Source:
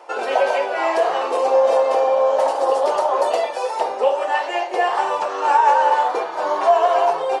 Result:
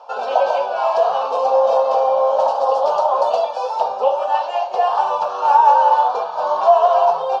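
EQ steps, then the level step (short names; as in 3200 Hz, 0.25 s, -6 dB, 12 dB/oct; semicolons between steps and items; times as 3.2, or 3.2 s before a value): air absorption 300 m; bell 6600 Hz +12 dB 1.8 oct; fixed phaser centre 820 Hz, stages 4; +4.0 dB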